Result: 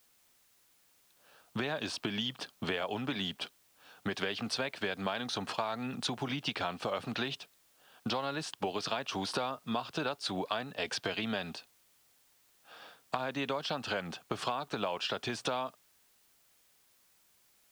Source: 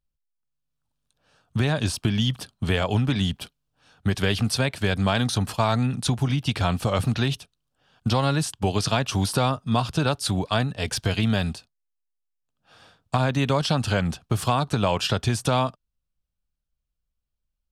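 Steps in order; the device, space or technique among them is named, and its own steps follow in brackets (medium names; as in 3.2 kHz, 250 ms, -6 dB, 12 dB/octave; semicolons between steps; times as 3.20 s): baby monitor (band-pass 330–4300 Hz; compression, threshold -33 dBFS, peak gain reduction 14 dB; white noise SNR 30 dB); trim +1.5 dB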